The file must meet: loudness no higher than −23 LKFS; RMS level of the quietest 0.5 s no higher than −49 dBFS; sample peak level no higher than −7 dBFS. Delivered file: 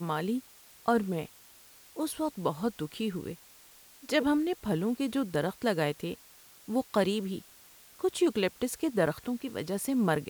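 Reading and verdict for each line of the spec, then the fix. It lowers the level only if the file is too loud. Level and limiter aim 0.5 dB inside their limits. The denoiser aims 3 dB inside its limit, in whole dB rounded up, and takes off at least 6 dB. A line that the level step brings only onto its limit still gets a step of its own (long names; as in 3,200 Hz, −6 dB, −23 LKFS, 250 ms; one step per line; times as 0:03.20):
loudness −31.5 LKFS: in spec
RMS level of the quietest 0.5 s −56 dBFS: in spec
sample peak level −12.0 dBFS: in spec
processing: no processing needed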